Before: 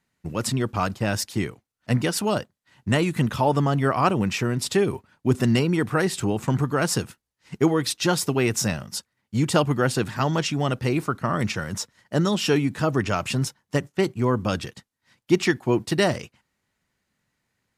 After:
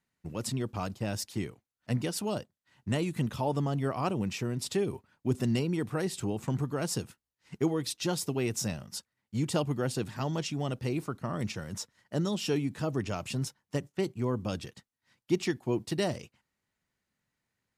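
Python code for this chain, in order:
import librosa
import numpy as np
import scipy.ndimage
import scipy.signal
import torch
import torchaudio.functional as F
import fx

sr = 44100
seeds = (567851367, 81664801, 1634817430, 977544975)

y = fx.dynamic_eq(x, sr, hz=1500.0, q=1.0, threshold_db=-39.0, ratio=4.0, max_db=-7)
y = y * 10.0 ** (-8.0 / 20.0)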